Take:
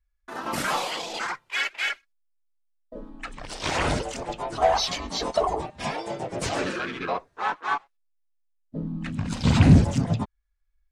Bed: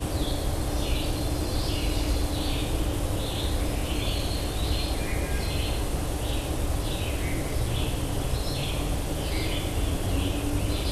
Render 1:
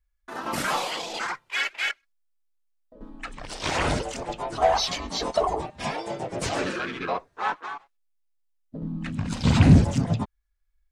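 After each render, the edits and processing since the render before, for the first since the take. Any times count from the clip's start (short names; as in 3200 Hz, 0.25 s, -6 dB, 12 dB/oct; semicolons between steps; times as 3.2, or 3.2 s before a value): 1.91–3.01 compressor 2:1, threshold -56 dBFS; 7.6–8.82 compressor, threshold -31 dBFS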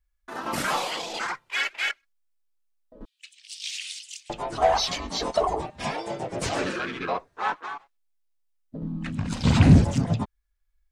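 3.05–4.3 steep high-pass 2700 Hz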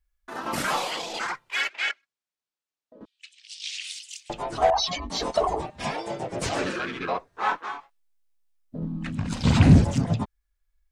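1.68–3.84 BPF 140–7000 Hz; 4.7–5.1 spectral contrast raised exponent 1.7; 7.31–8.85 doubler 24 ms -3 dB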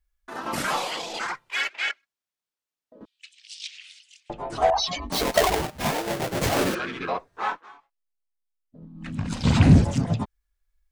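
3.67–4.5 LPF 1100 Hz 6 dB/oct; 5.12–6.75 half-waves squared off; 7.41–9.16 dip -13.5 dB, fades 0.22 s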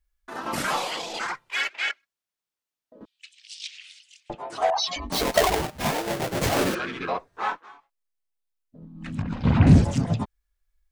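4.35–4.96 HPF 620 Hz 6 dB/oct; 9.22–9.67 LPF 2000 Hz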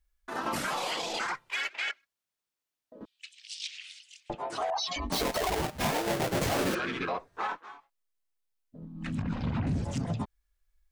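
compressor 6:1, threshold -25 dBFS, peak gain reduction 14.5 dB; limiter -23 dBFS, peak gain reduction 6.5 dB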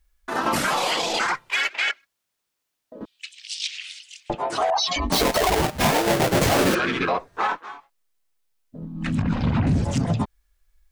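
gain +9.5 dB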